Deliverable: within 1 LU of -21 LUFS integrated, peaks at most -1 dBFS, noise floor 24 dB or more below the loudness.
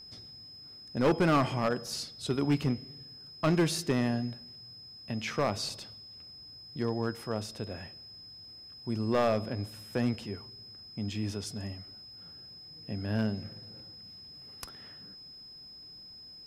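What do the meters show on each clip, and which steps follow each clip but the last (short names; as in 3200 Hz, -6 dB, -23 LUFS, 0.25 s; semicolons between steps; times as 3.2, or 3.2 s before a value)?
clipped 0.6%; flat tops at -20.0 dBFS; steady tone 5100 Hz; tone level -47 dBFS; loudness -32.0 LUFS; peak -20.0 dBFS; loudness target -21.0 LUFS
-> clip repair -20 dBFS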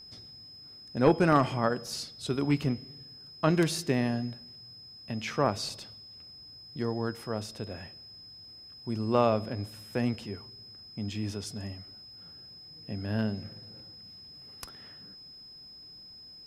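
clipped 0.0%; steady tone 5100 Hz; tone level -47 dBFS
-> notch 5100 Hz, Q 30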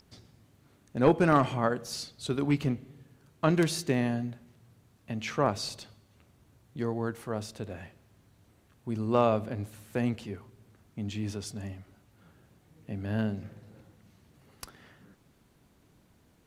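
steady tone none; loudness -30.5 LUFS; peak -11.0 dBFS; loudness target -21.0 LUFS
-> gain +9.5 dB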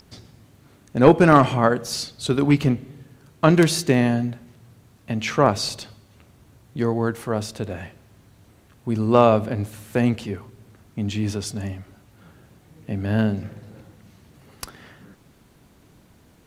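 loudness -21.0 LUFS; peak -1.5 dBFS; noise floor -55 dBFS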